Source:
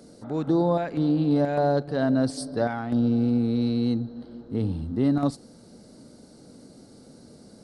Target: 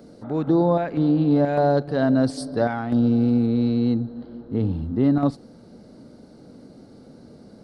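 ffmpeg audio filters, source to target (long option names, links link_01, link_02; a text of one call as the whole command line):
ffmpeg -i in.wav -af "asetnsamples=nb_out_samples=441:pad=0,asendcmd='1.46 equalizer g -5;3.46 equalizer g -15',equalizer=frequency=8800:width=0.64:gain=-12.5,volume=3.5dB" out.wav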